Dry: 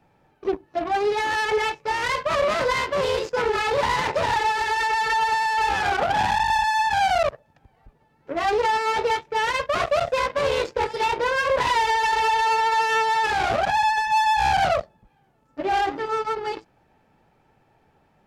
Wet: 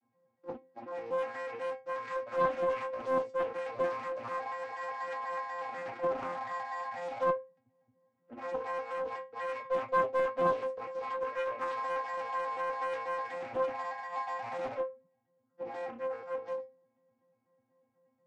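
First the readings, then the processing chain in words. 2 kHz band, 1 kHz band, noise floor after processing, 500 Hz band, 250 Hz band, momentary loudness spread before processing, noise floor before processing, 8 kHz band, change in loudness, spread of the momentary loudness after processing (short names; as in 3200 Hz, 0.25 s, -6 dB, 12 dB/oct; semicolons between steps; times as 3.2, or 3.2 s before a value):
-17.5 dB, -15.0 dB, -78 dBFS, -8.5 dB, -10.5 dB, 6 LU, -63 dBFS, under -25 dB, -13.0 dB, 10 LU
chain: arpeggiated vocoder bare fifth, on A#2, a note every 0.122 s; metallic resonator 260 Hz, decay 0.3 s, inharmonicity 0.002; Doppler distortion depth 0.52 ms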